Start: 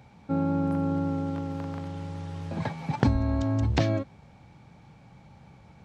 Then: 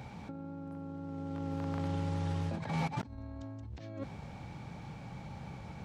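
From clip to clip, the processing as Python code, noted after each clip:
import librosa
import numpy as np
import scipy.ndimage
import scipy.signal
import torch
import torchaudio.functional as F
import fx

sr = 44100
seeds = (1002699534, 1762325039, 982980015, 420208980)

y = fx.over_compress(x, sr, threshold_db=-38.0, ratio=-1.0)
y = F.gain(torch.from_numpy(y), -1.5).numpy()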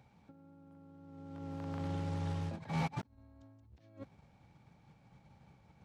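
y = fx.leveller(x, sr, passes=1)
y = fx.upward_expand(y, sr, threshold_db=-42.0, expansion=2.5)
y = F.gain(torch.from_numpy(y), -2.5).numpy()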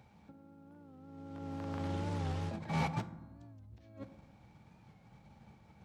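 y = fx.rev_fdn(x, sr, rt60_s=1.0, lf_ratio=1.3, hf_ratio=0.45, size_ms=28.0, drr_db=10.0)
y = fx.record_warp(y, sr, rpm=45.0, depth_cents=100.0)
y = F.gain(torch.from_numpy(y), 2.5).numpy()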